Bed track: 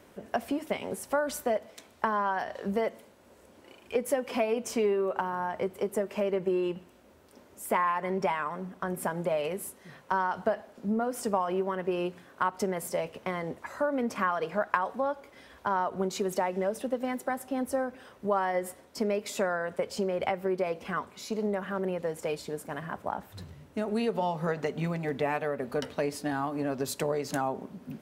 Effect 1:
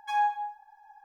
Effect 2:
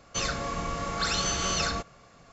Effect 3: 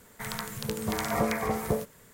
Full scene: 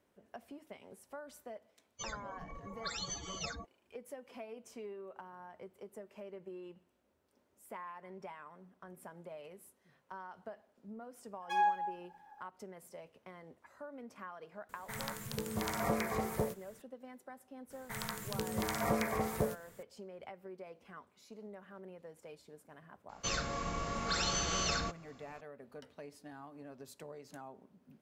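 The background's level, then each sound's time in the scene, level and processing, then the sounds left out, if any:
bed track -19.5 dB
1.84 s: add 2 -7.5 dB + expander on every frequency bin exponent 3
11.42 s: add 1 -4 dB
14.69 s: add 3 -6.5 dB
17.70 s: add 3 -5.5 dB
23.09 s: add 2 -6 dB

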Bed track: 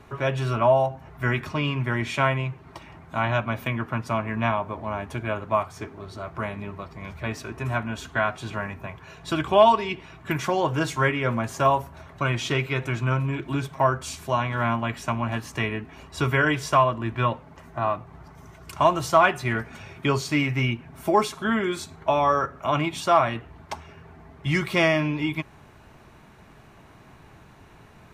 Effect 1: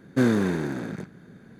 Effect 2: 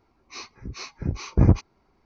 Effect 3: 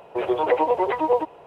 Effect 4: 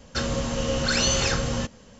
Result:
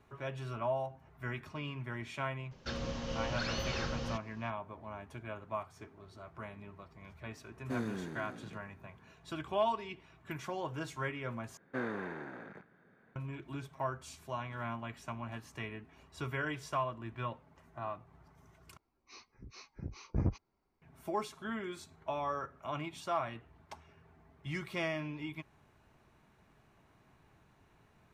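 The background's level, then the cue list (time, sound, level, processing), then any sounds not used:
bed track -15.5 dB
2.51 s: add 4 -11.5 dB + CVSD coder 32 kbps
7.53 s: add 1 -16.5 dB
11.57 s: replace with 1 -7.5 dB + three-band isolator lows -14 dB, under 510 Hz, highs -23 dB, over 2.6 kHz
18.77 s: replace with 2 -15.5 dB
not used: 3

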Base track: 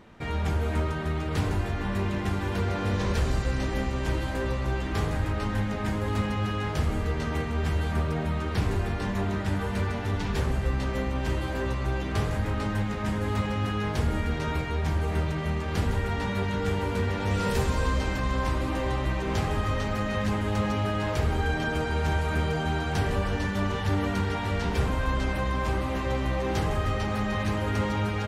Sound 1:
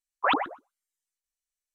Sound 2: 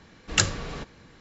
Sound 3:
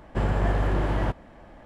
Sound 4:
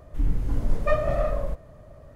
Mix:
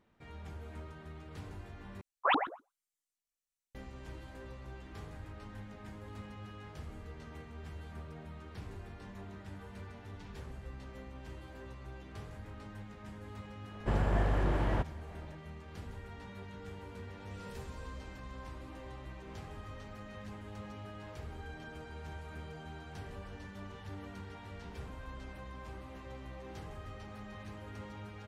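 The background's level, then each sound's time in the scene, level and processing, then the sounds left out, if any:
base track -19.5 dB
2.01 s: replace with 1 -4.5 dB
13.71 s: add 3 -6 dB
not used: 2, 4

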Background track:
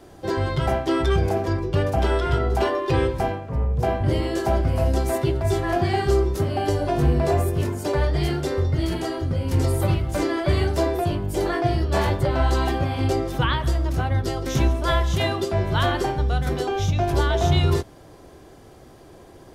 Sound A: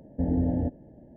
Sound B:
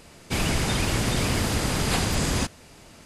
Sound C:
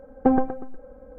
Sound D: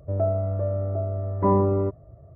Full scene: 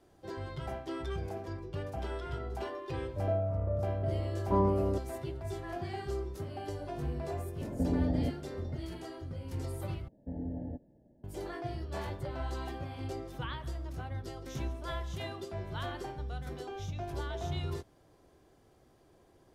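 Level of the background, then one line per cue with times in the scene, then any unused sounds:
background track -17 dB
3.08 s: add D -7.5 dB
7.61 s: add A -4.5 dB + three bands compressed up and down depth 70%
10.08 s: replace with A -13 dB
not used: B, C

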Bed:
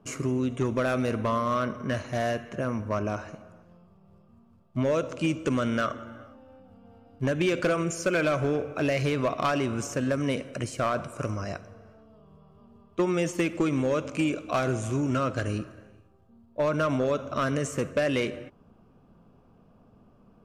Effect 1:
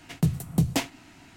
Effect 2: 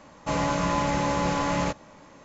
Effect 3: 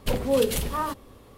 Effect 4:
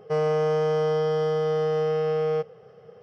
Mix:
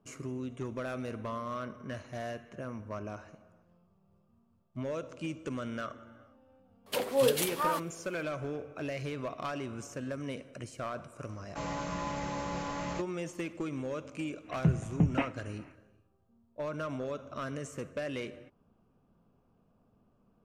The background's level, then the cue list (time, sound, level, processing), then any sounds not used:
bed -11 dB
6.86 s: add 3 -2 dB + high-pass 410 Hz
11.29 s: add 2 -11 dB
14.42 s: add 1 -3.5 dB, fades 0.10 s + steep low-pass 2.8 kHz 72 dB/octave
not used: 4

